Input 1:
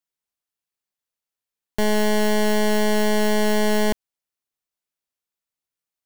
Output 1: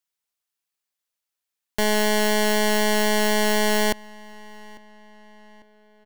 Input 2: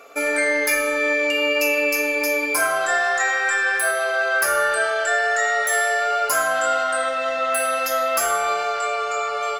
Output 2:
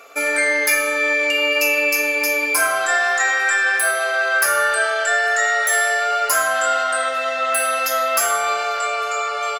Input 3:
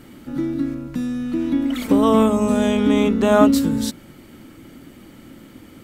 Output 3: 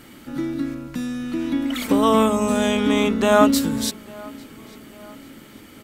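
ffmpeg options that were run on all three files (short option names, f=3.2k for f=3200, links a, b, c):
-filter_complex "[0:a]tiltshelf=f=680:g=-4,asplit=2[a][b];[b]adelay=848,lowpass=f=3.8k:p=1,volume=-22.5dB,asplit=2[c][d];[d]adelay=848,lowpass=f=3.8k:p=1,volume=0.51,asplit=2[e][f];[f]adelay=848,lowpass=f=3.8k:p=1,volume=0.51[g];[a][c][e][g]amix=inputs=4:normalize=0"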